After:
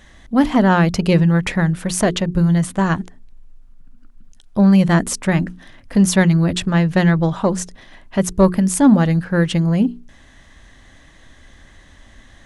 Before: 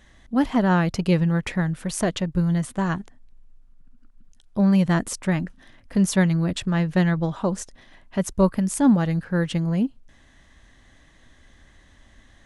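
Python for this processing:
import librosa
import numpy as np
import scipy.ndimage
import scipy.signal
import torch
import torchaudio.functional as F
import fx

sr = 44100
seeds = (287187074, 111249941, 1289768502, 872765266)

p1 = fx.hum_notches(x, sr, base_hz=60, count=7)
p2 = 10.0 ** (-15.5 / 20.0) * np.tanh(p1 / 10.0 ** (-15.5 / 20.0))
p3 = p1 + (p2 * librosa.db_to_amplitude(-3.0))
y = p3 * librosa.db_to_amplitude(3.0)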